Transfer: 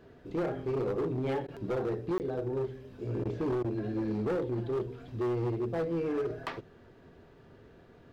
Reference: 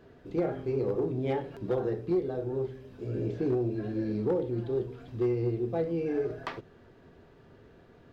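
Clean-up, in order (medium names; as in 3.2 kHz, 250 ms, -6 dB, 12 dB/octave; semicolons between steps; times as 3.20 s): clip repair -27.5 dBFS; interpolate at 2.18 s, 19 ms; interpolate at 1.47/3.24/3.63 s, 12 ms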